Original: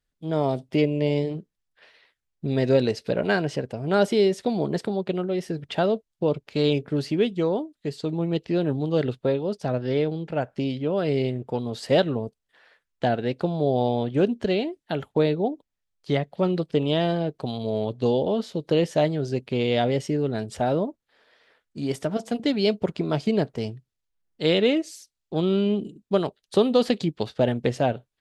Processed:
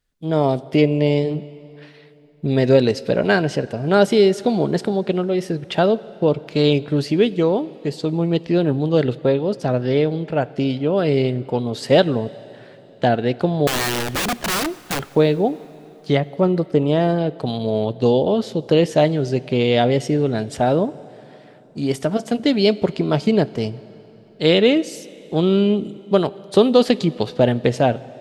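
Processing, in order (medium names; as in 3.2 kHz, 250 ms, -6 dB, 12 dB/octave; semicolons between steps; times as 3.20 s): 13.67–15.11 s: integer overflow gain 23 dB; 16.20–17.18 s: peaking EQ 3.3 kHz -10.5 dB 1 oct; plate-style reverb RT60 3.6 s, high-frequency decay 0.85×, DRR 18.5 dB; trim +6 dB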